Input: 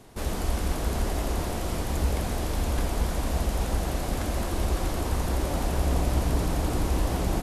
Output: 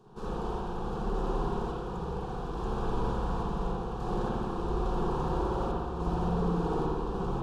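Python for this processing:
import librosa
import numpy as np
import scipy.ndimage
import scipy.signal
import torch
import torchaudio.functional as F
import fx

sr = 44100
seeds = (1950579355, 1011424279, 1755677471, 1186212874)

y = fx.low_shelf(x, sr, hz=130.0, db=-7.5)
y = fx.tremolo_random(y, sr, seeds[0], hz=3.5, depth_pct=55)
y = fx.spacing_loss(y, sr, db_at_10k=25)
y = fx.fixed_phaser(y, sr, hz=410.0, stages=8)
y = fx.rev_spring(y, sr, rt60_s=1.1, pass_ms=(58,), chirp_ms=30, drr_db=-5.0)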